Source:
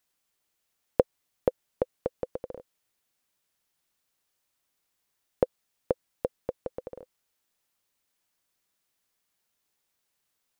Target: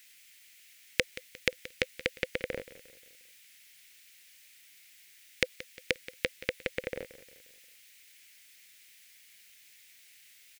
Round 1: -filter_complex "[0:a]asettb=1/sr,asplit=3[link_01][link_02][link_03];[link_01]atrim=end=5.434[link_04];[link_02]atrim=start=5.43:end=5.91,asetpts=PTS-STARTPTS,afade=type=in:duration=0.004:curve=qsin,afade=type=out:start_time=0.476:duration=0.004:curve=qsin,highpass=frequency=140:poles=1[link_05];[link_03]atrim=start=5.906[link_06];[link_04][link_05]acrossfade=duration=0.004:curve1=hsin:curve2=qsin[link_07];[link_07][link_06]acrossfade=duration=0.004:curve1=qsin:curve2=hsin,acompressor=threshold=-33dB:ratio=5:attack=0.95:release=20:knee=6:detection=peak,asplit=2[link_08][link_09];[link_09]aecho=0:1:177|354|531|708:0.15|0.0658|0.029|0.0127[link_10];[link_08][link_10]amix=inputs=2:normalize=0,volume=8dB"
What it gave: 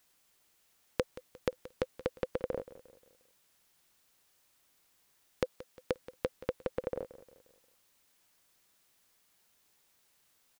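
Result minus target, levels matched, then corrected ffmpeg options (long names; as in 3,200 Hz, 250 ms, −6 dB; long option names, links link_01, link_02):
2,000 Hz band −11.0 dB
-filter_complex "[0:a]asettb=1/sr,asplit=3[link_01][link_02][link_03];[link_01]atrim=end=5.434[link_04];[link_02]atrim=start=5.43:end=5.91,asetpts=PTS-STARTPTS,afade=type=in:duration=0.004:curve=qsin,afade=type=out:start_time=0.476:duration=0.004:curve=qsin,highpass=frequency=140:poles=1[link_05];[link_03]atrim=start=5.906[link_06];[link_04][link_05]acrossfade=duration=0.004:curve1=hsin:curve2=qsin[link_07];[link_07][link_06]acrossfade=duration=0.004:curve1=qsin:curve2=hsin,acompressor=threshold=-33dB:ratio=5:attack=0.95:release=20:knee=6:detection=peak,highshelf=frequency=1500:width_type=q:width=3:gain=12,asplit=2[link_08][link_09];[link_09]aecho=0:1:177|354|531|708:0.15|0.0658|0.029|0.0127[link_10];[link_08][link_10]amix=inputs=2:normalize=0,volume=8dB"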